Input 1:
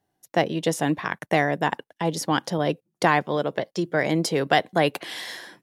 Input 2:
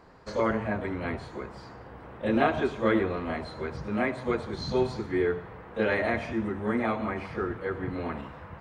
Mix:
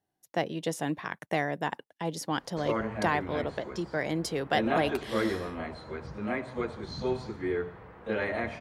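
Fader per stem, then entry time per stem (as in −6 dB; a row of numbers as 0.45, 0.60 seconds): −8.0, −4.5 decibels; 0.00, 2.30 seconds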